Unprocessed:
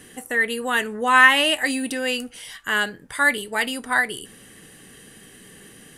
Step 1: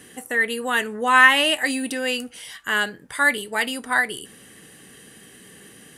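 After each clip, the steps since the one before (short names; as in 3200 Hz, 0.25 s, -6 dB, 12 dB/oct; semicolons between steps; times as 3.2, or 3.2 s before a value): HPF 90 Hz 6 dB/oct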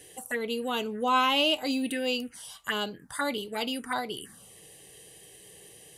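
envelope phaser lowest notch 200 Hz, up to 1800 Hz, full sweep at -21 dBFS; gain -2 dB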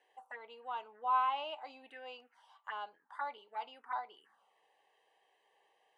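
ladder band-pass 1000 Hz, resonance 60%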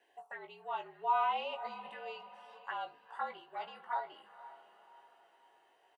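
doubler 18 ms -5.5 dB; diffused feedback echo 0.492 s, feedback 46%, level -15 dB; frequency shift -54 Hz; gain +1 dB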